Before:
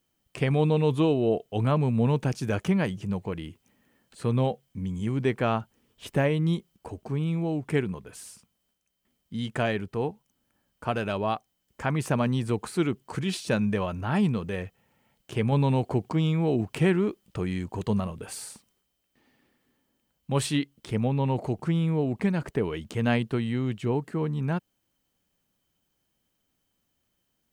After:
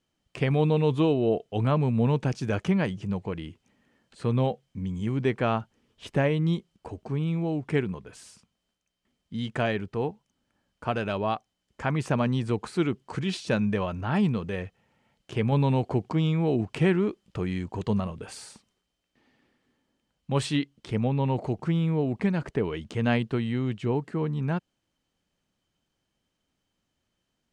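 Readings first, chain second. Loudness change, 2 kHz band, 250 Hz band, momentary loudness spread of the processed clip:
0.0 dB, 0.0 dB, 0.0 dB, 11 LU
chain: LPF 6600 Hz 12 dB/oct

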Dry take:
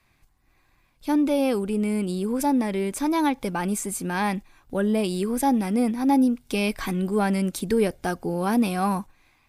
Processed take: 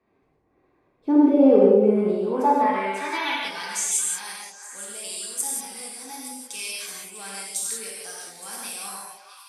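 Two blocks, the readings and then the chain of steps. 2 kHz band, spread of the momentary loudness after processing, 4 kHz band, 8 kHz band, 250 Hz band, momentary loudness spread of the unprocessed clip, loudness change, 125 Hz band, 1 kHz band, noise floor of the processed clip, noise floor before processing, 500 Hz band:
0.0 dB, 20 LU, +3.5 dB, +9.0 dB, -2.0 dB, 6 LU, +2.5 dB, n/a, +0.5 dB, -67 dBFS, -65 dBFS, +4.0 dB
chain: band-pass sweep 400 Hz -> 7800 Hz, 1.85–3.99; on a send: delay with a stepping band-pass 0.217 s, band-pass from 550 Hz, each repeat 1.4 oct, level -4 dB; on the sum: non-linear reverb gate 0.21 s flat, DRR -5 dB; gain +7.5 dB

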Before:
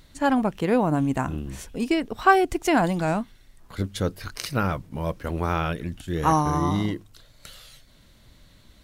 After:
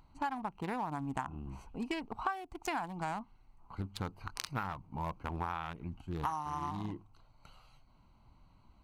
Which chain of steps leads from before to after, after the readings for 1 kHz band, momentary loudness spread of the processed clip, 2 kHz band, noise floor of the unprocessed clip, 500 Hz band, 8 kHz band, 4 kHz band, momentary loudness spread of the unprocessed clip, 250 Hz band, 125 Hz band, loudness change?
-12.5 dB, 7 LU, -15.0 dB, -55 dBFS, -19.5 dB, -13.0 dB, -12.0 dB, 12 LU, -17.0 dB, -14.5 dB, -15.0 dB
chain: Wiener smoothing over 25 samples; resonant low shelf 690 Hz -7.5 dB, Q 3; compressor 10:1, threshold -32 dBFS, peak gain reduction 22.5 dB; gain -1 dB

